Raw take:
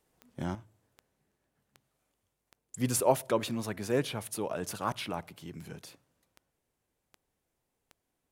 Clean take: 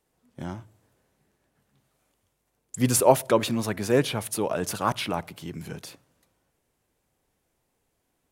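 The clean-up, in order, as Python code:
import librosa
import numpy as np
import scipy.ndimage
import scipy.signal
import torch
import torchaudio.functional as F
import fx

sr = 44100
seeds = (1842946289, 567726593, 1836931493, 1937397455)

y = fx.fix_declick_ar(x, sr, threshold=10.0)
y = fx.gain(y, sr, db=fx.steps((0.0, 0.0), (0.55, 7.5)))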